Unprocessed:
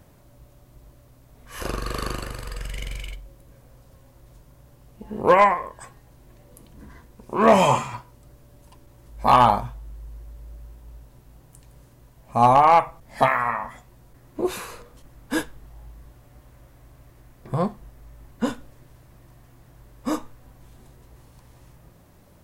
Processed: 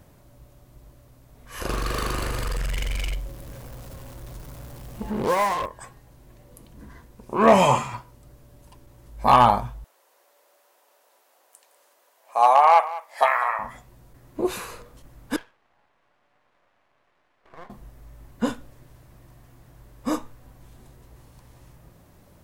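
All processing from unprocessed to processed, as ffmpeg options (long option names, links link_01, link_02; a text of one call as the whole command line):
ffmpeg -i in.wav -filter_complex "[0:a]asettb=1/sr,asplit=3[link_01][link_02][link_03];[link_01]atrim=end=1.704[link_04];[link_02]atrim=start=1.7:end=5.66,asetpts=PTS-STARTPTS,afade=type=in:duration=0.004:curve=qsin,afade=type=out:start_time=3.956:duration=0.004:curve=qsin,aeval=exprs='val(0)+0.5*0.0447*sgn(val(0))':channel_layout=same,acompressor=threshold=-24dB:ratio=2:attack=3.2:release=140:knee=1:detection=peak,acrusher=bits=4:mix=0:aa=0.5[link_05];[link_03]atrim=start=5.656[link_06];[link_04][link_05]acrossfade=duration=0.004:curve1=hsin:curve2=qsin[link_07];[link_07][link_06]acrossfade=duration=0.004:curve1=qsin:curve2=hsin,asettb=1/sr,asplit=3[link_08][link_09][link_10];[link_08]atrim=end=9.844[link_11];[link_09]atrim=start=9.84:end=13.59,asetpts=PTS-STARTPTS,afade=type=in:duration=0.004:curve=qsin,afade=type=out:start_time=3.746:duration=0.004:curve=qsin,highpass=frequency=530:width=0.5412,highpass=frequency=530:width=1.3066,aecho=1:1:195:0.15,atrim=end_sample=165375[link_12];[link_10]atrim=start=13.586[link_13];[link_11][link_12]acrossfade=duration=0.004:curve1=hsin:curve2=qsin[link_14];[link_14][link_13]acrossfade=duration=0.004:curve1=qsin:curve2=hsin,asettb=1/sr,asplit=3[link_15][link_16][link_17];[link_15]atrim=end=15.364[link_18];[link_16]atrim=start=15.36:end=17.7,asetpts=PTS-STARTPTS,afade=type=in:duration=0.004:curve=qsin,afade=type=out:start_time=2.336:duration=0.004:curve=qsin,acompressor=threshold=-30dB:ratio=3:attack=3.2:release=140:knee=1:detection=peak,highpass=740,lowpass=2200,aeval=exprs='max(val(0),0)':channel_layout=same[link_19];[link_17]atrim=start=17.696[link_20];[link_18][link_19]acrossfade=duration=0.004:curve1=hsin:curve2=qsin[link_21];[link_21][link_20]acrossfade=duration=0.004:curve1=qsin:curve2=hsin" out.wav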